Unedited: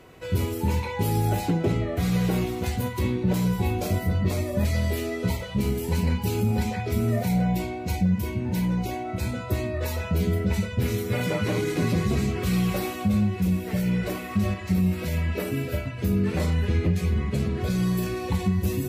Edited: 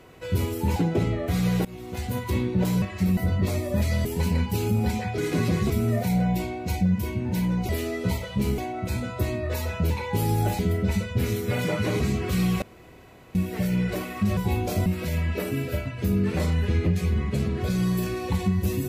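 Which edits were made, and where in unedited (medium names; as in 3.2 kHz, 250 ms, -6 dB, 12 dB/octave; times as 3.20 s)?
0.76–1.45 s: move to 10.21 s
2.34–2.91 s: fade in, from -23 dB
3.51–4.00 s: swap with 14.51–14.86 s
4.88–5.77 s: move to 8.89 s
11.62–12.14 s: move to 6.90 s
12.76–13.49 s: room tone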